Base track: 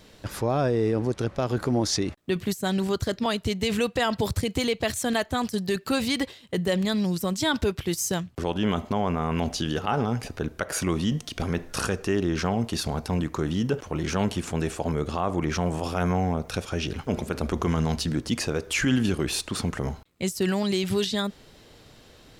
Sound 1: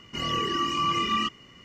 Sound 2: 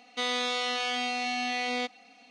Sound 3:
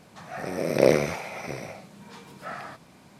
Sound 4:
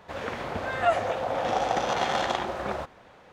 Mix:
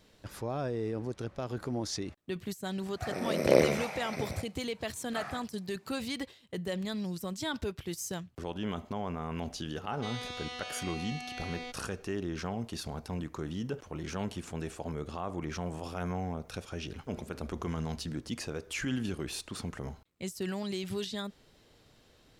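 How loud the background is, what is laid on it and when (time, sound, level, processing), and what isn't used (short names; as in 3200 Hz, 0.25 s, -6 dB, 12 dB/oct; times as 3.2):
base track -10.5 dB
2.69 add 3 -4 dB + gate -41 dBFS, range -10 dB
9.85 add 2 -11.5 dB
not used: 1, 4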